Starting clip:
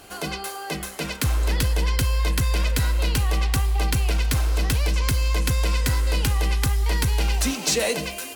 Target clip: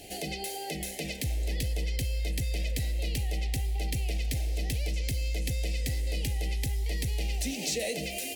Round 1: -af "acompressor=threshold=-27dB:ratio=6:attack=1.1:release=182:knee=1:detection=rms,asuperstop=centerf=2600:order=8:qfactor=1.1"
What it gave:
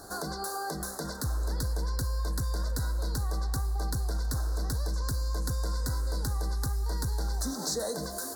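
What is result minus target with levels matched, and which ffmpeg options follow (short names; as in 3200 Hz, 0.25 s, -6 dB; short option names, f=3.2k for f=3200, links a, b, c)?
1000 Hz band +6.5 dB
-af "acompressor=threshold=-27dB:ratio=6:attack=1.1:release=182:knee=1:detection=rms,asuperstop=centerf=1200:order=8:qfactor=1.1"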